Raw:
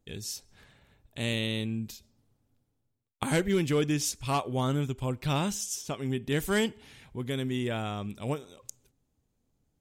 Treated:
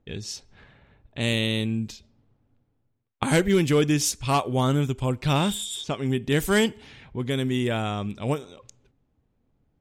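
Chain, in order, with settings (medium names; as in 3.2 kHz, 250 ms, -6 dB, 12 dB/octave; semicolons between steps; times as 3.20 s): level-controlled noise filter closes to 2.4 kHz, open at -26.5 dBFS; spectral replace 5.40–5.81 s, 3.1–7 kHz before; trim +6 dB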